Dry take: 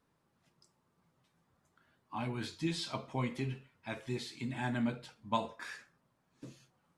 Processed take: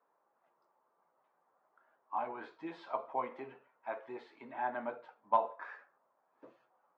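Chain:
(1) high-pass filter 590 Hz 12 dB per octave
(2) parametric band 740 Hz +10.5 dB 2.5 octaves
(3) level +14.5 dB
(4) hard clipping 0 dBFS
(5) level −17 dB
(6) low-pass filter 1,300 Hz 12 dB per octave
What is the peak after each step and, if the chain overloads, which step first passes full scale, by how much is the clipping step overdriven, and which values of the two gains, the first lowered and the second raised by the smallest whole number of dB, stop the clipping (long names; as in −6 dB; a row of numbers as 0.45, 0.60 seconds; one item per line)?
−20.0, −11.5, +3.0, 0.0, −17.0, −17.0 dBFS
step 3, 3.0 dB
step 3 +11.5 dB, step 5 −14 dB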